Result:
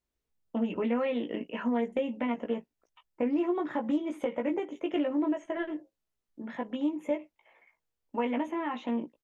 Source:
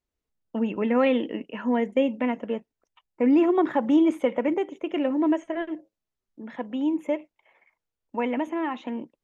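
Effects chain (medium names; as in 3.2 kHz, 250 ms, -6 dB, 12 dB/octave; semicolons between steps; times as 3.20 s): compression 6:1, threshold -26 dBFS, peak gain reduction 10.5 dB; doubling 17 ms -4 dB; loudspeaker Doppler distortion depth 0.12 ms; trim -2 dB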